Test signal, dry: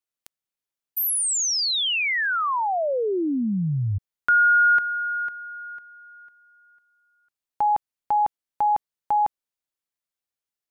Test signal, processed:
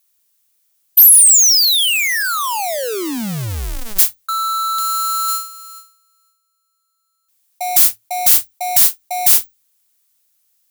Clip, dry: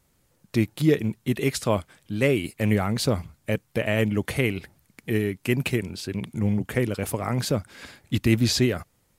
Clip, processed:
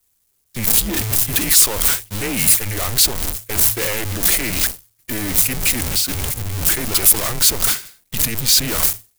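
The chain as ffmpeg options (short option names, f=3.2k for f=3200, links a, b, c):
-filter_complex "[0:a]aeval=exprs='val(0)+0.5*0.0841*sgn(val(0))':c=same,agate=range=-60dB:threshold=-23dB:ratio=16:release=424:detection=peak,areverse,acompressor=threshold=-34dB:ratio=4:attack=12:release=41:detection=peak,areverse,afreqshift=-110,asplit=2[a][b];[b]aeval=exprs='0.15*sin(PI/2*3.98*val(0)/0.15)':c=same,volume=-6dB[c];[a][c]amix=inputs=2:normalize=0,crystalizer=i=4:c=0,volume=-1.5dB"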